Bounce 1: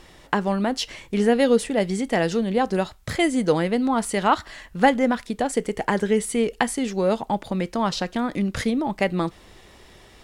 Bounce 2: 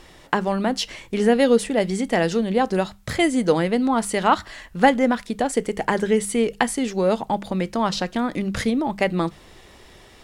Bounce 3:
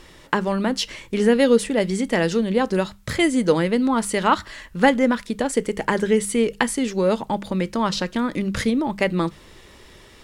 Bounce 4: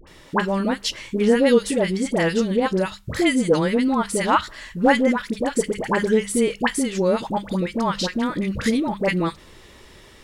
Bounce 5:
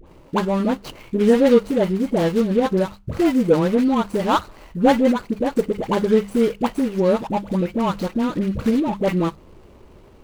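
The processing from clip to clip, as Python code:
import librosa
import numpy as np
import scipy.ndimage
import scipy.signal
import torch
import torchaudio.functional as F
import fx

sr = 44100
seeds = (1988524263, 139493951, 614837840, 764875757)

y1 = fx.hum_notches(x, sr, base_hz=50, count=4)
y1 = y1 * 10.0 ** (1.5 / 20.0)
y2 = fx.peak_eq(y1, sr, hz=730.0, db=-10.0, octaves=0.22)
y2 = y2 * 10.0 ** (1.0 / 20.0)
y3 = fx.dispersion(y2, sr, late='highs', ms=72.0, hz=960.0)
y4 = scipy.signal.medfilt(y3, 25)
y4 = y4 * 10.0 ** (2.5 / 20.0)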